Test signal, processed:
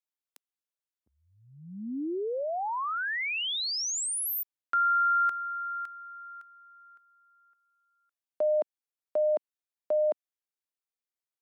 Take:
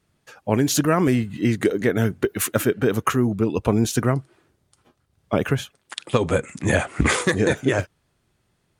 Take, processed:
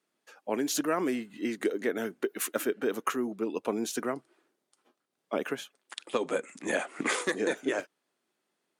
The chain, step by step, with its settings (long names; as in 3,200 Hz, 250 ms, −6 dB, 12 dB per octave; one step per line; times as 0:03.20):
high-pass filter 250 Hz 24 dB per octave
level −8.5 dB